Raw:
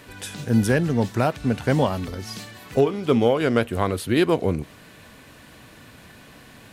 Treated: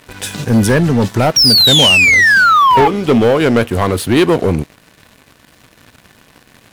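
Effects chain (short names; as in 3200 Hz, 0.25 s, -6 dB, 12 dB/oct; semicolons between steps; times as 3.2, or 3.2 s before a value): painted sound fall, 1.36–2.88, 820–5700 Hz -17 dBFS; sample leveller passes 3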